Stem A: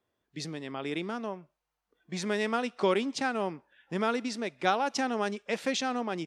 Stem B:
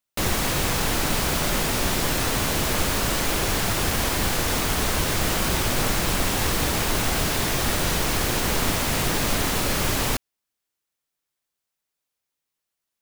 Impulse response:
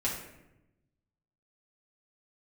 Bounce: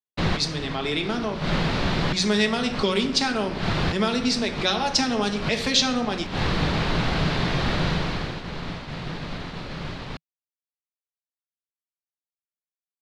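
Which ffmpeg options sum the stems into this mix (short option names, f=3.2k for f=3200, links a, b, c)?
-filter_complex "[0:a]acrossover=split=240|3000[a][b][c];[b]acompressor=threshold=-30dB:ratio=6[d];[a][d][c]amix=inputs=3:normalize=0,volume=1.5dB,asplit=3[e][f][g];[f]volume=-4.5dB[h];[1:a]lowpass=2.2k,equalizer=f=160:w=2.9:g=10,volume=-0.5dB,afade=t=out:st=7.82:d=0.57:silence=0.375837[i];[g]apad=whole_len=574128[j];[i][j]sidechaincompress=threshold=-45dB:ratio=8:attack=16:release=151[k];[2:a]atrim=start_sample=2205[l];[h][l]afir=irnorm=-1:irlink=0[m];[e][k][m]amix=inputs=3:normalize=0,agate=range=-33dB:threshold=-29dB:ratio=3:detection=peak,equalizer=f=4.2k:w=1.4:g=11.5"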